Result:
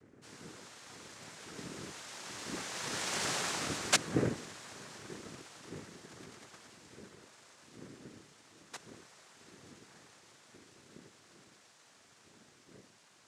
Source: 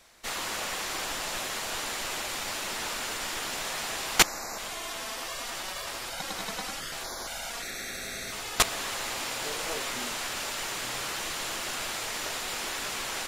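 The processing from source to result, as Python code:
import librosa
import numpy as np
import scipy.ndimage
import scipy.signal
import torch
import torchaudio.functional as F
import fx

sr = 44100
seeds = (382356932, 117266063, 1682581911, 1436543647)

y = fx.dmg_wind(x, sr, seeds[0], corner_hz=170.0, level_db=-31.0)
y = fx.doppler_pass(y, sr, speed_mps=32, closest_m=9.8, pass_at_s=3.27)
y = fx.noise_vocoder(y, sr, seeds[1], bands=3)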